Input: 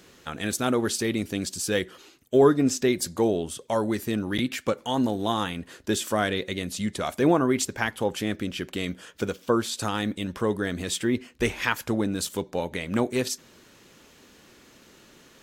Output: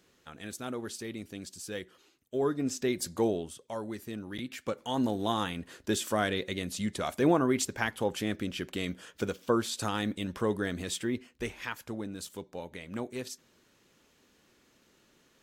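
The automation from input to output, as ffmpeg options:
ffmpeg -i in.wav -af "volume=3.5dB,afade=type=in:start_time=2.35:duration=0.89:silence=0.375837,afade=type=out:start_time=3.24:duration=0.35:silence=0.421697,afade=type=in:start_time=4.46:duration=0.64:silence=0.398107,afade=type=out:start_time=10.63:duration=0.9:silence=0.398107" out.wav

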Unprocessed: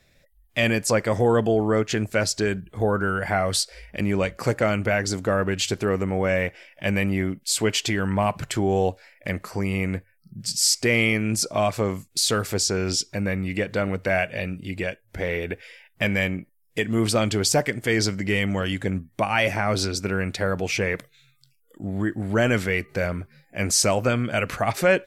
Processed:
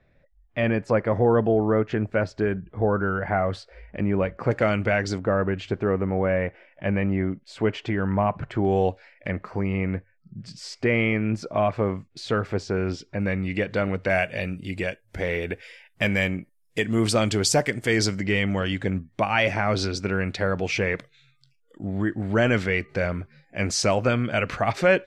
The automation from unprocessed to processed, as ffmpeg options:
ffmpeg -i in.wav -af "asetnsamples=nb_out_samples=441:pad=0,asendcmd='4.51 lowpass f 4100;5.18 lowpass f 1600;8.65 lowpass f 3700;9.28 lowpass f 2000;13.2 lowpass f 4700;14.1 lowpass f 10000;18.21 lowpass f 4900',lowpass=1600" out.wav

